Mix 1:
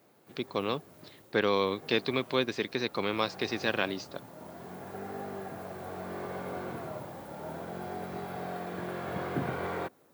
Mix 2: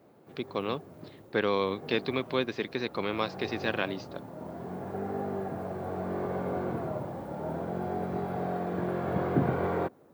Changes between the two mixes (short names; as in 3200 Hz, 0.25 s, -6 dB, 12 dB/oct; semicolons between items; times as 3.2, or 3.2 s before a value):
speech: add air absorption 130 m; background: add tilt shelf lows +7.5 dB, about 1500 Hz